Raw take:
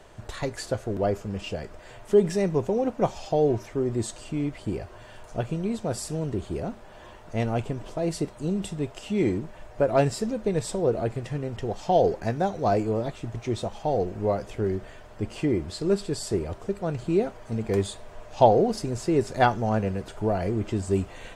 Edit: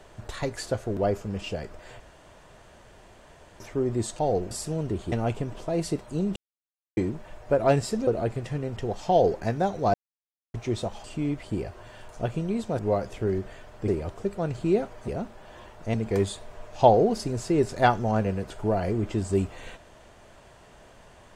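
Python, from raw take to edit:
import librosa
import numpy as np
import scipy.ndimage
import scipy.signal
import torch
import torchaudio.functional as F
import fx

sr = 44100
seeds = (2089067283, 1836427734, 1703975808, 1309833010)

y = fx.edit(x, sr, fx.room_tone_fill(start_s=2.0, length_s=1.6),
    fx.swap(start_s=4.19, length_s=1.75, other_s=13.84, other_length_s=0.32),
    fx.move(start_s=6.55, length_s=0.86, to_s=17.52),
    fx.silence(start_s=8.65, length_s=0.61),
    fx.cut(start_s=10.36, length_s=0.51),
    fx.silence(start_s=12.74, length_s=0.6),
    fx.cut(start_s=15.25, length_s=1.07), tone=tone)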